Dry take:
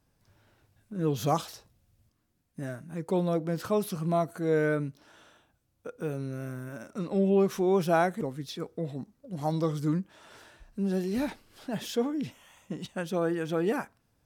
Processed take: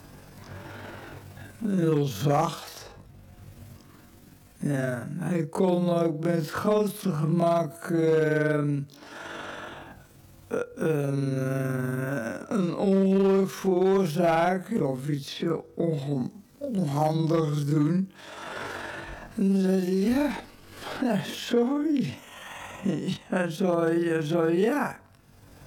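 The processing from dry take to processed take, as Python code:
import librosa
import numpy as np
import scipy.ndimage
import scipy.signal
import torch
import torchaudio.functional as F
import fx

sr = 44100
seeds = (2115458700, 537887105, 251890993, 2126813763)

y = fx.stretch_grains(x, sr, factor=1.8, grain_ms=94.0)
y = fx.clip_asym(y, sr, top_db=-20.5, bottom_db=-19.5)
y = fx.band_squash(y, sr, depth_pct=70)
y = F.gain(torch.from_numpy(y), 5.5).numpy()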